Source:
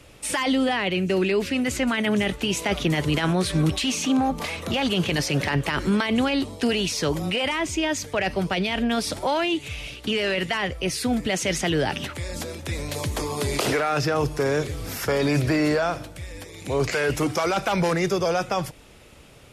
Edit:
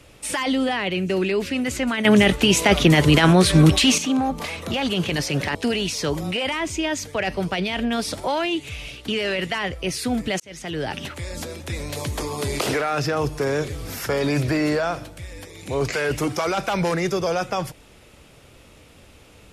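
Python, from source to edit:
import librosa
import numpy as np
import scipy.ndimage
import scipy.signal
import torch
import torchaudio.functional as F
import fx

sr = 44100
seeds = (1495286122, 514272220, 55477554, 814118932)

y = fx.edit(x, sr, fx.clip_gain(start_s=2.05, length_s=1.93, db=8.0),
    fx.cut(start_s=5.55, length_s=0.99),
    fx.fade_in_span(start_s=11.39, length_s=0.97, curve='qsin'), tone=tone)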